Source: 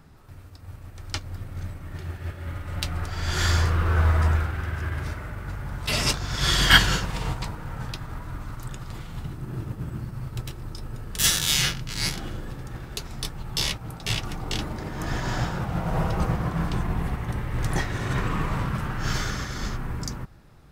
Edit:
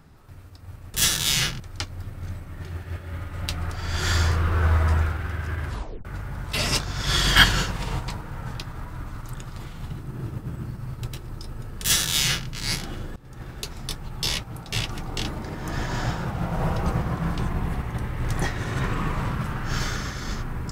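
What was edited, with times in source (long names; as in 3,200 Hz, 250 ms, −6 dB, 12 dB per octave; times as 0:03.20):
0:05.00: tape stop 0.39 s
0:11.16–0:11.82: duplicate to 0:00.94
0:12.50–0:12.82: fade in, from −22.5 dB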